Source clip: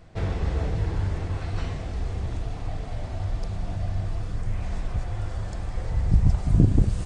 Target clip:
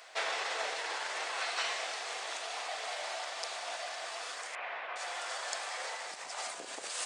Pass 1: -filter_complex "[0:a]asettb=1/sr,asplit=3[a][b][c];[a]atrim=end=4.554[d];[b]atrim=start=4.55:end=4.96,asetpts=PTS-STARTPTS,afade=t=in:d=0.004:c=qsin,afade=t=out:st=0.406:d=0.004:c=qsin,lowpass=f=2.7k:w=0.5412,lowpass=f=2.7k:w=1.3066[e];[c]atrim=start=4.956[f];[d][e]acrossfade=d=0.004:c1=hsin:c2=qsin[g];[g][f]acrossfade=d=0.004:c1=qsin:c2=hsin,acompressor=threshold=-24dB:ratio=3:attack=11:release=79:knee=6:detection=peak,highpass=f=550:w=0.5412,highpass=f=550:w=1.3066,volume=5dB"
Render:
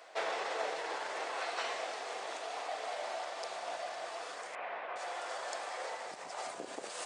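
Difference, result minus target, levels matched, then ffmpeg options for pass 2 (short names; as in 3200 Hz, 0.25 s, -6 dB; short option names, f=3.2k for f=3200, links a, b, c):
1000 Hz band +3.0 dB
-filter_complex "[0:a]asettb=1/sr,asplit=3[a][b][c];[a]atrim=end=4.554[d];[b]atrim=start=4.55:end=4.96,asetpts=PTS-STARTPTS,afade=t=in:d=0.004:c=qsin,afade=t=out:st=0.406:d=0.004:c=qsin,lowpass=f=2.7k:w=0.5412,lowpass=f=2.7k:w=1.3066[e];[c]atrim=start=4.956[f];[d][e]acrossfade=d=0.004:c1=hsin:c2=qsin[g];[g][f]acrossfade=d=0.004:c1=qsin:c2=hsin,acompressor=threshold=-24dB:ratio=3:attack=11:release=79:knee=6:detection=peak,highpass=f=550:w=0.5412,highpass=f=550:w=1.3066,tiltshelf=f=950:g=-7.5,volume=5dB"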